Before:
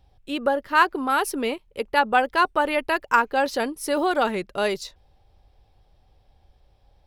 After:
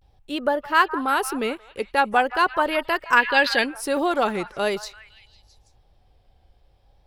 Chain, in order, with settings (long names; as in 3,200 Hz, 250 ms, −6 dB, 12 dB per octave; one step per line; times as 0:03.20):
echo through a band-pass that steps 172 ms, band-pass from 1,100 Hz, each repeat 0.7 octaves, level −12 dB
gain on a spectral selection 0:03.18–0:03.66, 1,600–5,100 Hz +11 dB
pitch vibrato 0.43 Hz 69 cents